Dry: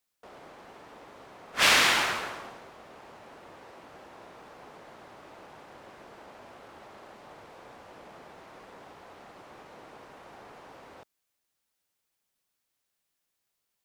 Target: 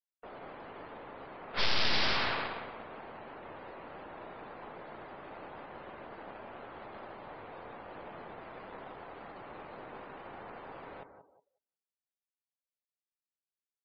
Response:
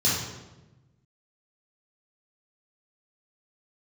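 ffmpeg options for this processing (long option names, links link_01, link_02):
-filter_complex "[0:a]asplit=2[link_01][link_02];[link_02]adelay=183,lowpass=frequency=3600:poles=1,volume=-8dB,asplit=2[link_03][link_04];[link_04]adelay=183,lowpass=frequency=3600:poles=1,volume=0.43,asplit=2[link_05][link_06];[link_06]adelay=183,lowpass=frequency=3600:poles=1,volume=0.43,asplit=2[link_07][link_08];[link_08]adelay=183,lowpass=frequency=3600:poles=1,volume=0.43,asplit=2[link_09][link_10];[link_10]adelay=183,lowpass=frequency=3600:poles=1,volume=0.43[link_11];[link_01][link_03][link_05][link_07][link_09][link_11]amix=inputs=6:normalize=0,aeval=exprs='0.422*(cos(1*acos(clip(val(0)/0.422,-1,1)))-cos(1*PI/2))+0.0237*(cos(3*acos(clip(val(0)/0.422,-1,1)))-cos(3*PI/2))+0.0376*(cos(5*acos(clip(val(0)/0.422,-1,1)))-cos(5*PI/2))+0.00944*(cos(7*acos(clip(val(0)/0.422,-1,1)))-cos(7*PI/2))+0.168*(cos(8*acos(clip(val(0)/0.422,-1,1)))-cos(8*PI/2))':channel_layout=same,aresample=11025,asoftclip=type=hard:threshold=-25dB,aresample=44100,afftdn=noise_reduction=27:noise_floor=-59,volume=1dB"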